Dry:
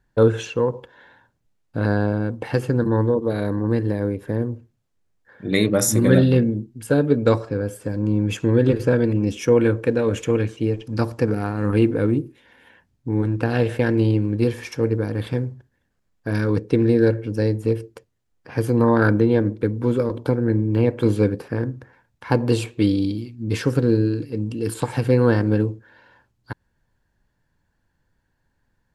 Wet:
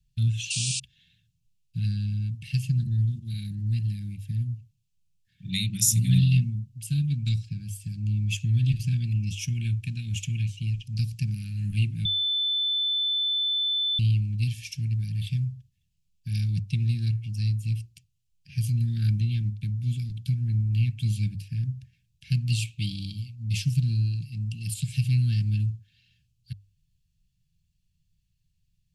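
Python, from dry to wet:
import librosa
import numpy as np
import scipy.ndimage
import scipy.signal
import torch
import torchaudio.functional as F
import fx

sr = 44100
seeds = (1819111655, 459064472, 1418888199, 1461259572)

y = fx.spec_paint(x, sr, seeds[0], shape='noise', start_s=0.5, length_s=0.3, low_hz=2300.0, high_hz=9600.0, level_db=-29.0)
y = fx.edit(y, sr, fx.bleep(start_s=12.05, length_s=1.94, hz=3520.0, db=-22.0), tone=tone)
y = scipy.signal.sosfilt(scipy.signal.cheby1(4, 1.0, [170.0, 2600.0], 'bandstop', fs=sr, output='sos'), y)
y = fx.peak_eq(y, sr, hz=390.0, db=12.0, octaves=0.53)
y = fx.hum_notches(y, sr, base_hz=50, count=2)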